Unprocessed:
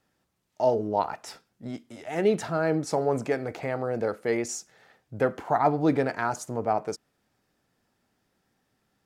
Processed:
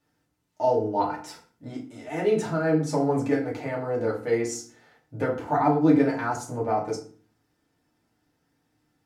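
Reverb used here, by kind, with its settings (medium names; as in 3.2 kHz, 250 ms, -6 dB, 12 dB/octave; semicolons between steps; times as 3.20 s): FDN reverb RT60 0.42 s, low-frequency decay 1.55×, high-frequency decay 0.75×, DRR -4 dB; trim -5.5 dB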